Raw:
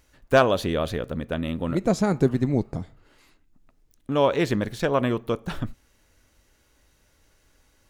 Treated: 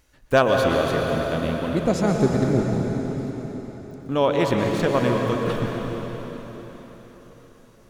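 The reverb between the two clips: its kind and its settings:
dense smooth reverb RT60 4.6 s, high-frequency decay 0.9×, pre-delay 105 ms, DRR 0.5 dB

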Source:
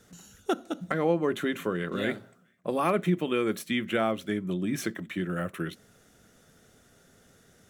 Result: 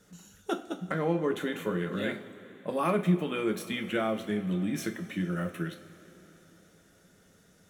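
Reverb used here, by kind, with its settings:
coupled-rooms reverb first 0.29 s, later 4 s, from −19 dB, DRR 3.5 dB
level −4 dB

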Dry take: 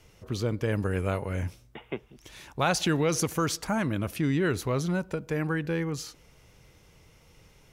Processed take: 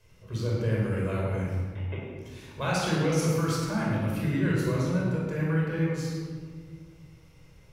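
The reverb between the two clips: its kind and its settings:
rectangular room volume 2,000 cubic metres, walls mixed, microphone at 5.2 metres
level −10 dB

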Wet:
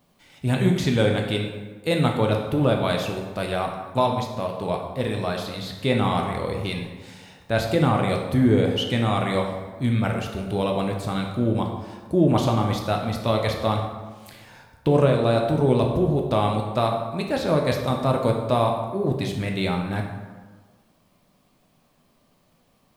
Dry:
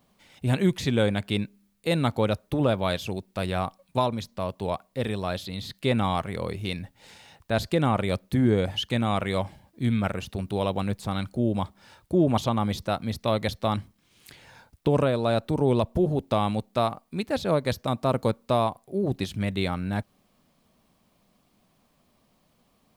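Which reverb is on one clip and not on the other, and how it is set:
dense smooth reverb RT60 1.4 s, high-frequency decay 0.6×, DRR 1 dB
level +1 dB

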